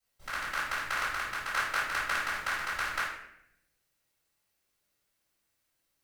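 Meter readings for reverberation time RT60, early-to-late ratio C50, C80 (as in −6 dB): 0.75 s, 1.0 dB, 5.0 dB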